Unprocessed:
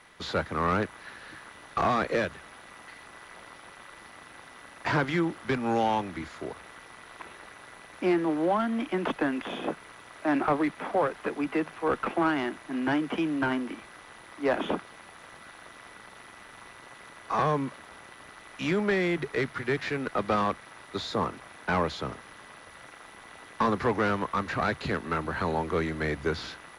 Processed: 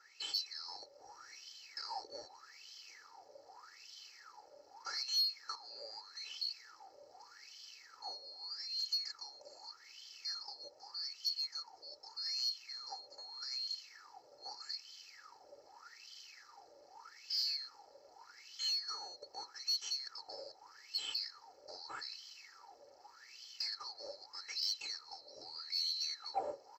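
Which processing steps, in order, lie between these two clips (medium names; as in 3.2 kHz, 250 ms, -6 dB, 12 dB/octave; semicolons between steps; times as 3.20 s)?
split-band scrambler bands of 4 kHz; tilt shelf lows +3.5 dB, about 1.2 kHz; comb 2.3 ms, depth 89%; in parallel at 0 dB: compression, threshold -34 dBFS, peak gain reduction 13.5 dB; on the sum: wah-wah 0.82 Hz 580–3200 Hz, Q 15; saturation -37.5 dBFS, distortion -23 dB; on a send at -12 dB: reverberation RT60 0.40 s, pre-delay 3 ms; on the sum: trim +12.5 dB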